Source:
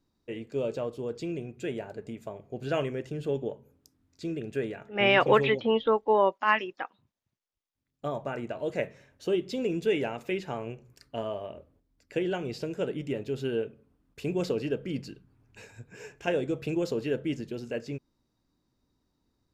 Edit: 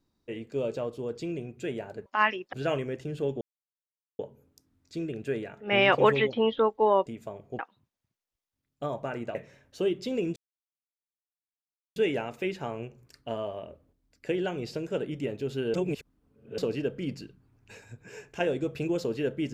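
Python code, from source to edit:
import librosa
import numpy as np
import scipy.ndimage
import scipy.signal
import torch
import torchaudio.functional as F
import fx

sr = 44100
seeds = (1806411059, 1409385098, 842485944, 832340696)

y = fx.edit(x, sr, fx.swap(start_s=2.06, length_s=0.53, other_s=6.34, other_length_s=0.47),
    fx.insert_silence(at_s=3.47, length_s=0.78),
    fx.cut(start_s=8.57, length_s=0.25),
    fx.insert_silence(at_s=9.83, length_s=1.6),
    fx.reverse_span(start_s=13.61, length_s=0.84), tone=tone)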